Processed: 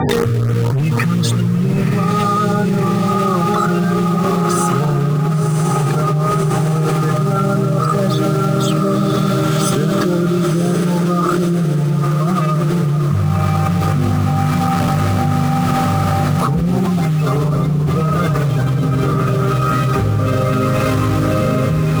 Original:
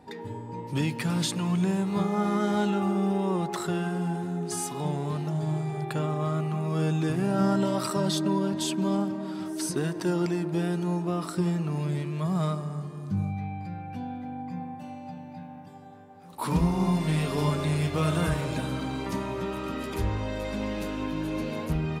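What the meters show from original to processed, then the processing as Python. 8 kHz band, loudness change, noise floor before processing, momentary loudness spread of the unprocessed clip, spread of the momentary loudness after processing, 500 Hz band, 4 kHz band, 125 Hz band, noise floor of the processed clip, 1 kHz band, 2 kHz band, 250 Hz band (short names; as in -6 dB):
+10.0 dB, +13.0 dB, -42 dBFS, 11 LU, 1 LU, +12.0 dB, +9.5 dB, +15.5 dB, -17 dBFS, +15.0 dB, +12.5 dB, +11.5 dB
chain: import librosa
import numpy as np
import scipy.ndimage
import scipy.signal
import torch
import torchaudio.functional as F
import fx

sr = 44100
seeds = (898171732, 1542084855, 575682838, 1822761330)

p1 = scipy.signal.sosfilt(scipy.signal.butter(4, 78.0, 'highpass', fs=sr, output='sos'), x)
p2 = fx.notch(p1, sr, hz=970.0, q=5.8)
p3 = fx.spec_gate(p2, sr, threshold_db=-20, keep='strong')
p4 = fx.high_shelf(p3, sr, hz=4900.0, db=-9.0)
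p5 = fx.quant_dither(p4, sr, seeds[0], bits=6, dither='none')
p6 = p4 + F.gain(torch.from_numpy(p5), -3.0).numpy()
p7 = fx.rider(p6, sr, range_db=4, speed_s=2.0)
p8 = fx.graphic_eq_31(p7, sr, hz=(125, 200, 315, 1250), db=(11, -6, -8, 12))
p9 = fx.rotary(p8, sr, hz=0.8)
p10 = np.clip(p9, -10.0 ** (-17.5 / 20.0), 10.0 ** (-17.5 / 20.0))
p11 = fx.filter_lfo_notch(p10, sr, shape='saw_up', hz=3.8, low_hz=500.0, high_hz=5300.0, q=2.4)
p12 = p11 + fx.echo_diffused(p11, sr, ms=1042, feedback_pct=55, wet_db=-3.0, dry=0)
p13 = fx.env_flatten(p12, sr, amount_pct=100)
y = F.gain(torch.from_numpy(p13), 1.0).numpy()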